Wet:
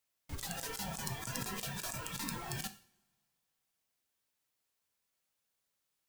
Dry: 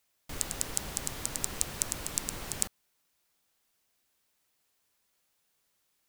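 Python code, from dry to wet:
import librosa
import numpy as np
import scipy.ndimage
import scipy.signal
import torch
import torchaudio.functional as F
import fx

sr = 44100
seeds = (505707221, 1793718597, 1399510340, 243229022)

y = fx.noise_reduce_blind(x, sr, reduce_db=15)
y = fx.over_compress(y, sr, threshold_db=-43.0, ratio=-1.0)
y = fx.rev_double_slope(y, sr, seeds[0], early_s=0.46, late_s=1.8, knee_db=-24, drr_db=8.5)
y = y * librosa.db_to_amplitude(1.0)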